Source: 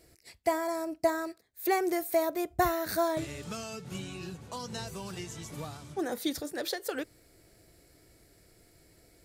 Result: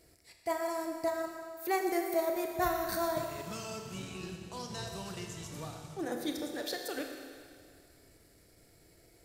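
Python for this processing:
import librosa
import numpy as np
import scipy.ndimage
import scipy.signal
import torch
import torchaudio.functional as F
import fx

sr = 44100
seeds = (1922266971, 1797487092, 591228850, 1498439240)

y = fx.transient(x, sr, attack_db=-7, sustain_db=-11)
y = fx.rev_schroeder(y, sr, rt60_s=2.1, comb_ms=26, drr_db=3.0)
y = y * librosa.db_to_amplitude(-1.5)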